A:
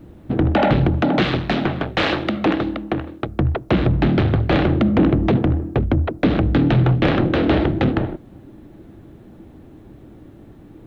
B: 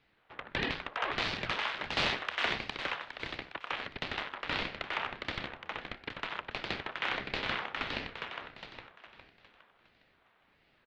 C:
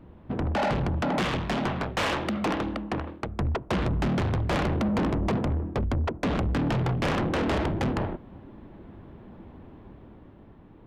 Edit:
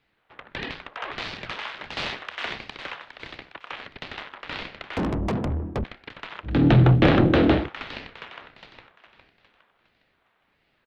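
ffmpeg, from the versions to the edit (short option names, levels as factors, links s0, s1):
-filter_complex "[1:a]asplit=3[s0][s1][s2];[s0]atrim=end=4.972[s3];[2:a]atrim=start=4.968:end=5.842[s4];[s1]atrim=start=5.838:end=6.67[s5];[0:a]atrim=start=6.43:end=7.7[s6];[s2]atrim=start=7.46[s7];[s3][s4]acrossfade=d=0.004:c1=hsin:c2=hsin[s8];[s8][s5]acrossfade=d=0.004:c1=hsin:c2=hsin[s9];[s9][s6]acrossfade=d=0.24:c1=tri:c2=tri[s10];[s10][s7]acrossfade=d=0.24:c1=tri:c2=tri"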